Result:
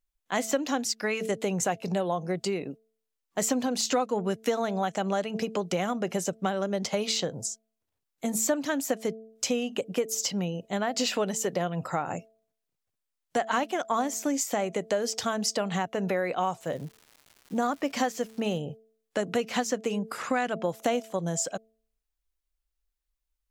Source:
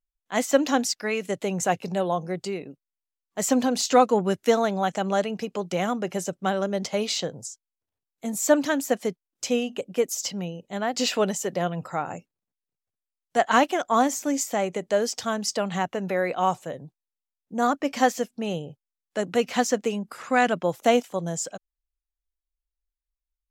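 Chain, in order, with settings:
hum removal 221.7 Hz, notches 3
downward compressor 4 to 1, threshold −30 dBFS, peak gain reduction 15 dB
0:16.59–0:18.59: surface crackle 290 per second −46 dBFS
level +4.5 dB

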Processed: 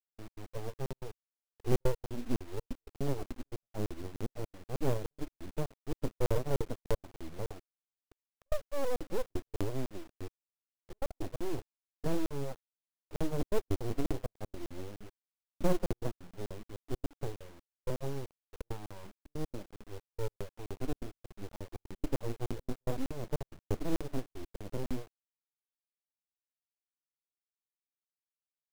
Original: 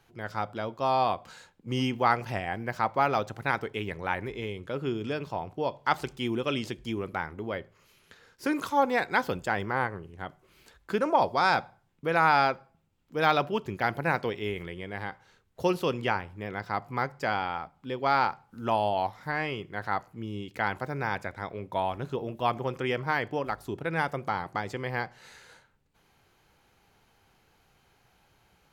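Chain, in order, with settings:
stylus tracing distortion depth 0.071 ms
reverb reduction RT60 0.66 s
inverse Chebyshev low-pass filter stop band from 1,500 Hz, stop band 80 dB
noise reduction from a noise print of the clip's start 11 dB
high-pass filter 120 Hz 6 dB per octave
full-wave rectification
log-companded quantiser 6 bits
gate pattern "x.x.xxxxx" 162 BPM −60 dB
regular buffer underruns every 0.30 s, samples 2,048, zero, from 0:00.86
level +12.5 dB

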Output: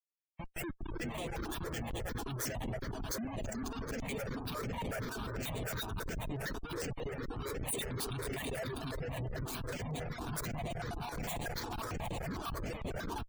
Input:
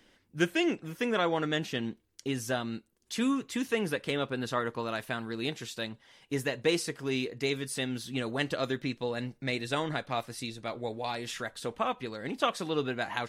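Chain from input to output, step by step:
spectral dynamics exaggerated over time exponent 3
reverb reduction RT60 0.56 s
downward compressor 12 to 1, threshold −49 dBFS, peak gain reduction 25 dB
low-shelf EQ 320 Hz −4 dB
echo that builds up and dies away 108 ms, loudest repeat 5, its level −10.5 dB
convolution reverb RT60 1.4 s, pre-delay 68 ms, DRR 6 dB
reverb reduction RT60 0.89 s
automatic gain control gain up to 12 dB
comparator with hysteresis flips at −43 dBFS
high-shelf EQ 7,400 Hz +6.5 dB
gate on every frequency bin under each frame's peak −25 dB strong
step-sequenced phaser 11 Hz 550–5,200 Hz
level +6.5 dB

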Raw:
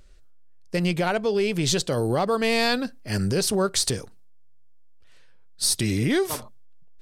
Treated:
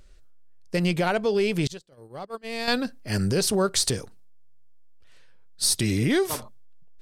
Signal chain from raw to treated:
0:01.67–0:02.68: noise gate −19 dBFS, range −33 dB

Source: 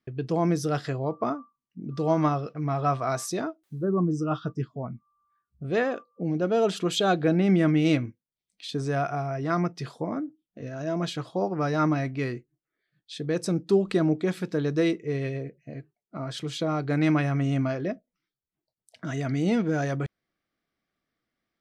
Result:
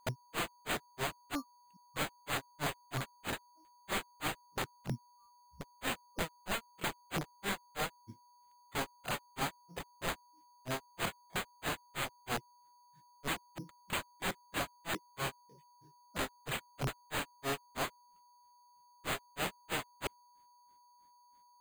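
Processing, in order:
downward compressor 6 to 1, threshold −24 dBFS, peak gain reduction 8 dB
wrap-around overflow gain 30.5 dB
granular cloud 163 ms, grains 3.1 per second, spray 15 ms, pitch spread up and down by 0 semitones
steady tone 970 Hz −65 dBFS
bad sample-rate conversion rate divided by 8×, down none, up hold
level +3 dB

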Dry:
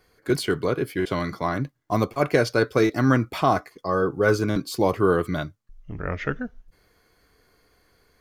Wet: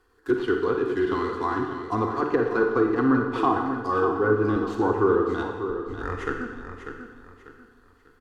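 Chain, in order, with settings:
running median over 9 samples
treble cut that deepens with the level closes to 1,100 Hz, closed at −15 dBFS
parametric band 2,300 Hz +14 dB 0.64 octaves
phaser with its sweep stopped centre 600 Hz, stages 6
repeating echo 594 ms, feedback 32%, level −9 dB
four-comb reverb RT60 1.2 s, DRR 3.5 dB

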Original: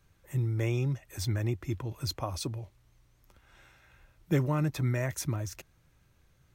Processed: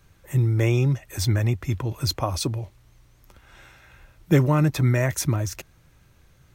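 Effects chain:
0:01.39–0:01.80: parametric band 330 Hz −11.5 dB 0.26 octaves
level +9 dB

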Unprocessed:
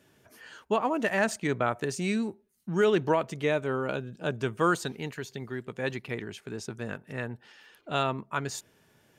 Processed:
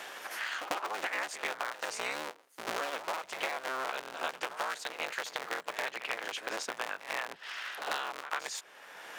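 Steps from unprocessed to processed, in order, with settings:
sub-harmonics by changed cycles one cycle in 3, inverted
high-pass filter 840 Hz 12 dB per octave
high-shelf EQ 7,100 Hz −8.5 dB
downward compressor 10 to 1, threshold −40 dBFS, peak gain reduction 17 dB
echo ahead of the sound 95 ms −13.5 dB
multiband upward and downward compressor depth 70%
level +8.5 dB

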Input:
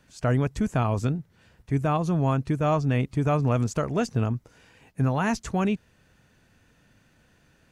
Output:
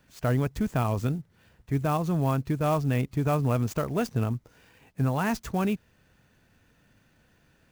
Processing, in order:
converter with an unsteady clock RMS 0.02 ms
level −2 dB

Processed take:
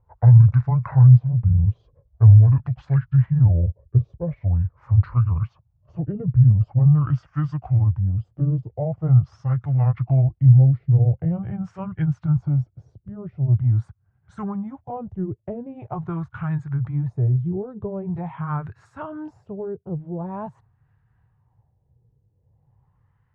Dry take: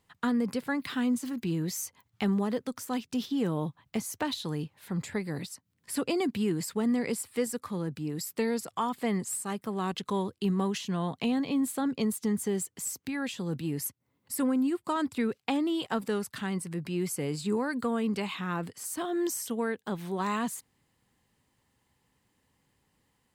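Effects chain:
pitch glide at a constant tempo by −12 semitones ending unshifted
auto-filter low-pass sine 0.44 Hz 440–1,500 Hz
low shelf with overshoot 170 Hz +12 dB, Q 3

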